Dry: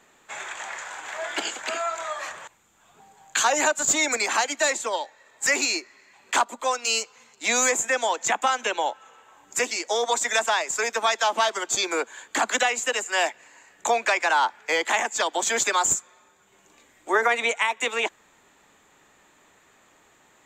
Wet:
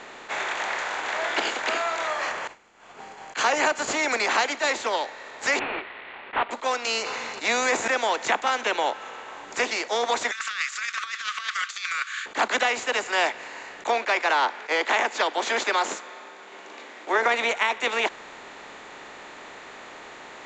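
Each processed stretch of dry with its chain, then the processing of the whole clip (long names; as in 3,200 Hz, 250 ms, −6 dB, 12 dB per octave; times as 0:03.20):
0:02.07–0:04.11: notch filter 3,700 Hz, Q 5.7 + downward expander −52 dBFS
0:05.59–0:06.51: variable-slope delta modulation 16 kbit/s + low-shelf EQ 460 Hz −9 dB
0:07.02–0:07.88: notch filter 3,200 Hz + level that may fall only so fast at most 30 dB per second
0:10.31–0:12.26: linear-phase brick-wall high-pass 1,100 Hz + compressor whose output falls as the input rises −31 dBFS, ratio −0.5
0:13.87–0:17.26: high-pass filter 240 Hz 24 dB per octave + high-frequency loss of the air 60 metres
whole clip: compressor on every frequency bin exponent 0.6; low-pass filter 5,400 Hz 24 dB per octave; level that may rise only so fast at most 360 dB per second; level −3.5 dB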